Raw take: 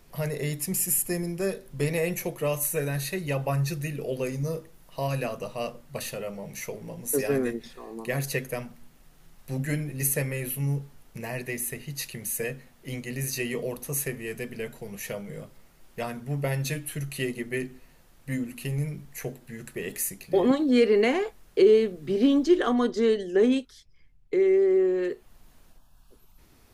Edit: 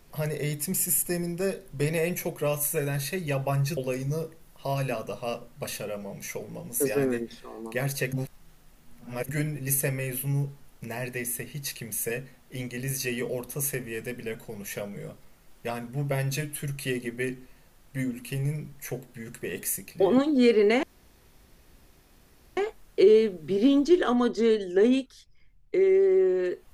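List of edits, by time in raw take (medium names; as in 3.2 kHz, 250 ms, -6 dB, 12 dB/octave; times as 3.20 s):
3.77–4.10 s: delete
8.46–9.62 s: reverse
21.16 s: insert room tone 1.74 s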